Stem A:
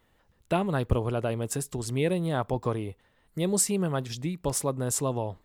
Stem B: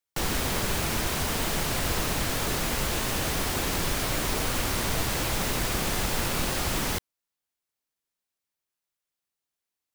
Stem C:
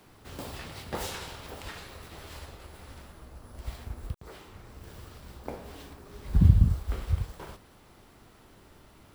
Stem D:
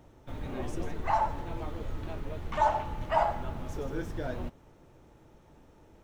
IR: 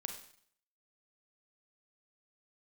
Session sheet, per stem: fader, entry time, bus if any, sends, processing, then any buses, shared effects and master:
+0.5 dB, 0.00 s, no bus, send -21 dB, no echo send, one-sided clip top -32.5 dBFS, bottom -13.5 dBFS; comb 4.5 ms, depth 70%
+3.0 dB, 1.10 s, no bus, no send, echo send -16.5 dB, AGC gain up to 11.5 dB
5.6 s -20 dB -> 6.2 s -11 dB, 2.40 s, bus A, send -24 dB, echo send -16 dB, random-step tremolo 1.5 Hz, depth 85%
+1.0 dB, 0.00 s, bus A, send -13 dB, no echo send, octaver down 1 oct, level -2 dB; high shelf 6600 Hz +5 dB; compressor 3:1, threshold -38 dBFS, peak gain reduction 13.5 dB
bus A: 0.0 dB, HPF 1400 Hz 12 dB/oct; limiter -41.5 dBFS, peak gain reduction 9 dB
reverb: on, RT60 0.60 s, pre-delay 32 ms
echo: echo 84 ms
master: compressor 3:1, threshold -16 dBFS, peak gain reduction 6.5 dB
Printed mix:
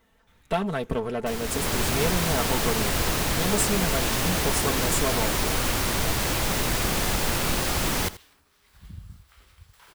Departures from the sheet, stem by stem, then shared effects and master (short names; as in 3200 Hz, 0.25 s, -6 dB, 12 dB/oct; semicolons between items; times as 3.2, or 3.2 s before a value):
stem B +3.0 dB -> -8.0 dB; stem C -20.0 dB -> -10.5 dB; stem D +1.0 dB -> -9.0 dB